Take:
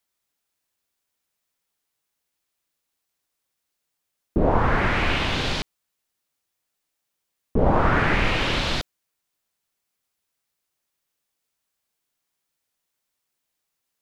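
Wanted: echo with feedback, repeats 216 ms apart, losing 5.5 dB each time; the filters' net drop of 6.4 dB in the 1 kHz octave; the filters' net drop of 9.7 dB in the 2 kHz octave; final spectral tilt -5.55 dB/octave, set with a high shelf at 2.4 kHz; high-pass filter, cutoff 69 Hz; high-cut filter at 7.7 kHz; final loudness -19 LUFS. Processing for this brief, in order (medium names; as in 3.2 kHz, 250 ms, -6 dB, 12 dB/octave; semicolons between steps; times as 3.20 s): high-pass 69 Hz; low-pass 7.7 kHz; peaking EQ 1 kHz -5 dB; peaking EQ 2 kHz -6.5 dB; treble shelf 2.4 kHz -9 dB; feedback delay 216 ms, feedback 53%, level -5.5 dB; trim +6.5 dB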